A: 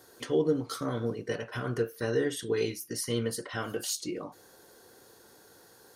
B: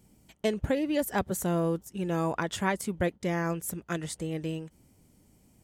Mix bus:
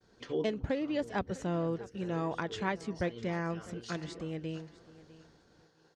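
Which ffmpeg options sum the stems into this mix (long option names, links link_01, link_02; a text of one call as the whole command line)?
ffmpeg -i stem1.wav -i stem2.wav -filter_complex "[0:a]volume=-7dB,asplit=2[link_01][link_02];[link_02]volume=-20.5dB[link_03];[1:a]volume=-5dB,asplit=3[link_04][link_05][link_06];[link_05]volume=-18.5dB[link_07];[link_06]apad=whole_len=262611[link_08];[link_01][link_08]sidechaincompress=threshold=-47dB:ratio=4:attack=27:release=214[link_09];[link_03][link_07]amix=inputs=2:normalize=0,aecho=0:1:652|1304|1956|2608:1|0.29|0.0841|0.0244[link_10];[link_09][link_04][link_10]amix=inputs=3:normalize=0,lowpass=frequency=5700:width=0.5412,lowpass=frequency=5700:width=1.3066,agate=range=-33dB:threshold=-59dB:ratio=3:detection=peak" out.wav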